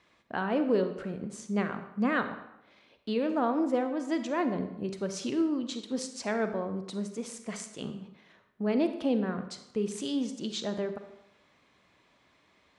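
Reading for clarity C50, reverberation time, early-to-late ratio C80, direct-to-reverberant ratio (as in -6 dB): 9.5 dB, 0.85 s, 11.5 dB, 8.0 dB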